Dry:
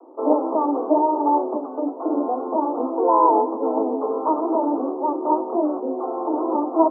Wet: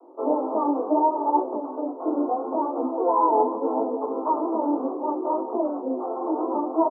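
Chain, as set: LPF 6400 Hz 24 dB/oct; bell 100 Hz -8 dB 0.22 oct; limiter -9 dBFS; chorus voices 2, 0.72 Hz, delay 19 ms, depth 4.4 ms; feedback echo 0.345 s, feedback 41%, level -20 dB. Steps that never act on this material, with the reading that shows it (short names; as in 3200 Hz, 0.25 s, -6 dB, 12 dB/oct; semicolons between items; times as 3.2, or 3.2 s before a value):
LPF 6400 Hz: input band ends at 1400 Hz; bell 100 Hz: input band starts at 210 Hz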